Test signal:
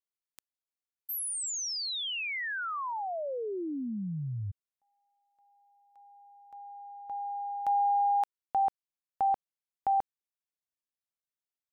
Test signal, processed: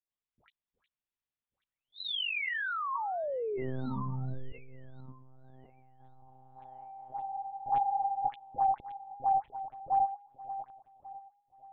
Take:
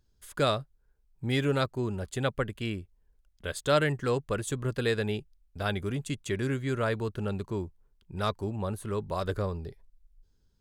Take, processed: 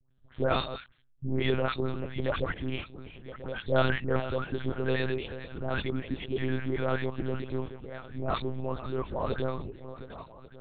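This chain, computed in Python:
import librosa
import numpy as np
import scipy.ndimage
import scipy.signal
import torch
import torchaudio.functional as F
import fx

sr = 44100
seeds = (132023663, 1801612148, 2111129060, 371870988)

y = fx.reverse_delay_fb(x, sr, ms=568, feedback_pct=44, wet_db=-12.5)
y = fx.dispersion(y, sr, late='highs', ms=119.0, hz=990.0)
y = fx.lpc_monotone(y, sr, seeds[0], pitch_hz=130.0, order=8)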